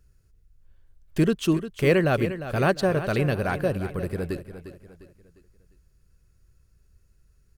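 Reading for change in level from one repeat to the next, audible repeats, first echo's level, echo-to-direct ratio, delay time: -8.0 dB, 3, -12.0 dB, -11.5 dB, 352 ms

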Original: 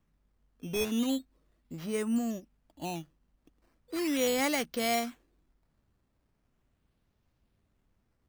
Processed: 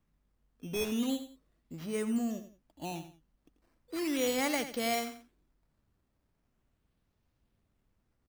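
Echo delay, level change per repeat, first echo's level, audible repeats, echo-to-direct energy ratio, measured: 88 ms, -11.0 dB, -11.0 dB, 2, -10.5 dB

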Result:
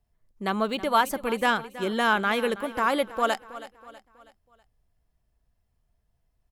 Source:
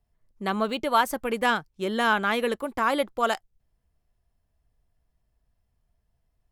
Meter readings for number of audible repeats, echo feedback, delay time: 3, 43%, 323 ms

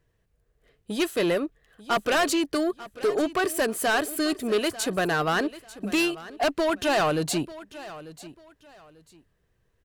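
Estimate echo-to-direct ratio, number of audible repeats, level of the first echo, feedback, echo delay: -16.5 dB, 2, -17.0 dB, 26%, 893 ms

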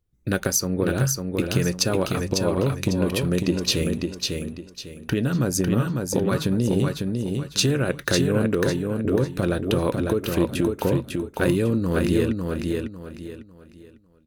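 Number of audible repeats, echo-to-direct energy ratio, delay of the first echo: 3, -3.5 dB, 550 ms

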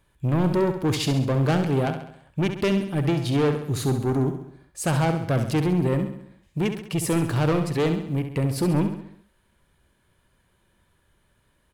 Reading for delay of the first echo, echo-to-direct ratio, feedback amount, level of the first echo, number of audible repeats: 67 ms, -7.0 dB, 52%, -8.5 dB, 5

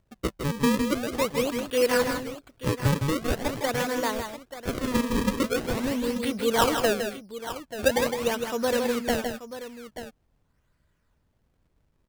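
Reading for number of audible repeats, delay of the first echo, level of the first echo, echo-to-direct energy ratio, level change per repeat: 2, 159 ms, -7.0 dB, -5.0 dB, no regular repeats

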